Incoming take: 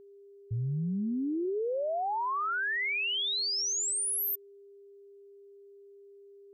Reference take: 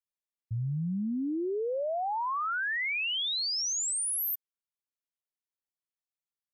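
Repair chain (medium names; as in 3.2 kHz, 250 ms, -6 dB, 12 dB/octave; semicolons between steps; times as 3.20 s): band-stop 400 Hz, Q 30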